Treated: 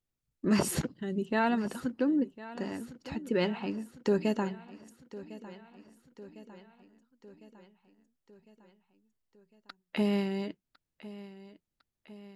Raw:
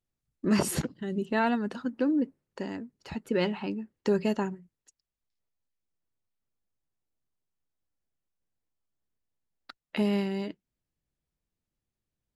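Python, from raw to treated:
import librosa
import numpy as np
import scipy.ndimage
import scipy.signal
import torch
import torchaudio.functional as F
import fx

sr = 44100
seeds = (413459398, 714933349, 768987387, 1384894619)

y = fx.echo_feedback(x, sr, ms=1054, feedback_pct=58, wet_db=-17)
y = F.gain(torch.from_numpy(y), -1.5).numpy()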